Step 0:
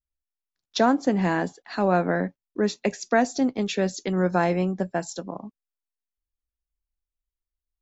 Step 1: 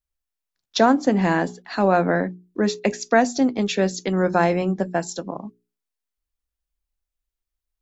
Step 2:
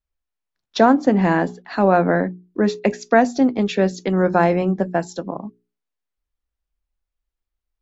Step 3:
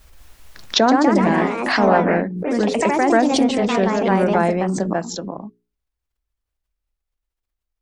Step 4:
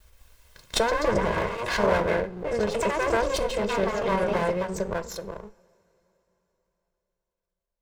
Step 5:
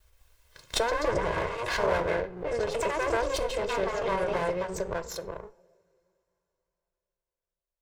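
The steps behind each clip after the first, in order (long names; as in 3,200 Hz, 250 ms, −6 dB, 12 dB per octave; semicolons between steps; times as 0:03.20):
mains-hum notches 60/120/180/240/300/360/420 Hz; level +4 dB
low-pass filter 2,300 Hz 6 dB per octave; level +3 dB
delay with pitch and tempo change per echo 205 ms, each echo +2 semitones, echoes 3; background raised ahead of every attack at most 44 dB per second; level −2.5 dB
lower of the sound and its delayed copy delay 1.9 ms; convolution reverb, pre-delay 3 ms, DRR 14 dB; level −6.5 dB
noise reduction from a noise print of the clip's start 7 dB; parametric band 210 Hz −14.5 dB 0.27 octaves; in parallel at −1.5 dB: downward compressor, threshold −33 dBFS, peak gain reduction 14.5 dB; on the sum: level −5 dB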